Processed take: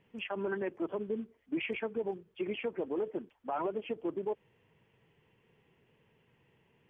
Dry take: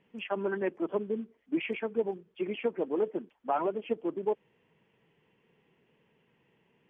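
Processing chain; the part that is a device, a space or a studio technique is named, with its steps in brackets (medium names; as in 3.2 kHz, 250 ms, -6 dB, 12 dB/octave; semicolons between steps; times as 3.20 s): car stereo with a boomy subwoofer (resonant low shelf 140 Hz +6.5 dB, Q 1.5; peak limiter -26 dBFS, peak gain reduction 8.5 dB)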